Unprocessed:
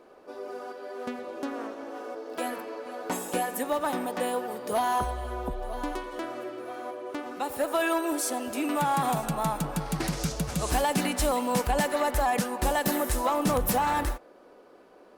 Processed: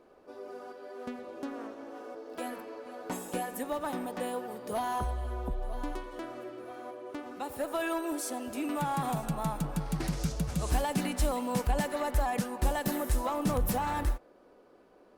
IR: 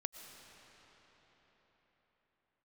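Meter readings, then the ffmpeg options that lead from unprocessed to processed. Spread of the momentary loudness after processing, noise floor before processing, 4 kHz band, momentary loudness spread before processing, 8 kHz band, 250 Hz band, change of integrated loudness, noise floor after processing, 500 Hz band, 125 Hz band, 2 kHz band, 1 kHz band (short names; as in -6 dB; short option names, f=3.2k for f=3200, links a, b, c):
13 LU, -54 dBFS, -7.0 dB, 12 LU, -7.0 dB, -3.5 dB, -5.0 dB, -59 dBFS, -6.0 dB, -0.5 dB, -7.0 dB, -6.5 dB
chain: -af "lowshelf=f=190:g=9.5,volume=-7dB"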